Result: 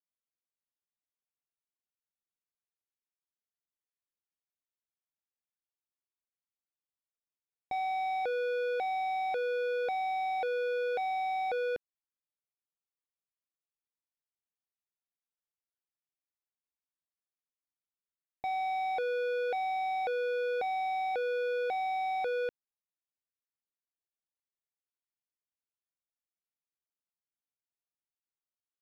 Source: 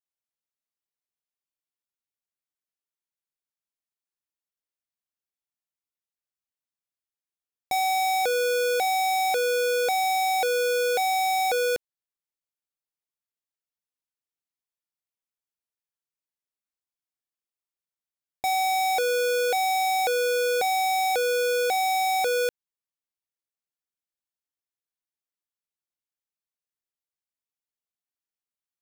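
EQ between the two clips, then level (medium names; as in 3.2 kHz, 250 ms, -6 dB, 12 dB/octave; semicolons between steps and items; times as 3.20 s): distance through air 380 m; -6.5 dB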